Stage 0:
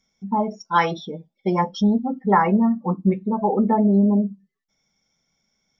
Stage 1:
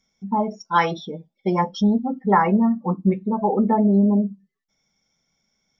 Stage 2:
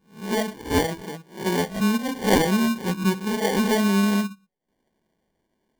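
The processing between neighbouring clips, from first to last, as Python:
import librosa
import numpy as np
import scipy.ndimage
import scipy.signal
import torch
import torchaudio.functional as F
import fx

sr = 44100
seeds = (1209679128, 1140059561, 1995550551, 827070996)

y1 = x
y2 = fx.spec_swells(y1, sr, rise_s=0.38)
y2 = fx.sample_hold(y2, sr, seeds[0], rate_hz=1300.0, jitter_pct=0)
y2 = y2 * 10.0 ** (-3.5 / 20.0)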